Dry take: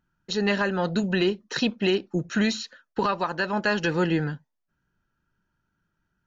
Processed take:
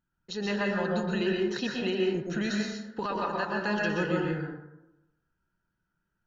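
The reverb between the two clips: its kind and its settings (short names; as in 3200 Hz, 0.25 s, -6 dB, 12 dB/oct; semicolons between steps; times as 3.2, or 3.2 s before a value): plate-style reverb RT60 0.95 s, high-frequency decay 0.4×, pre-delay 0.11 s, DRR -2 dB; gain -8.5 dB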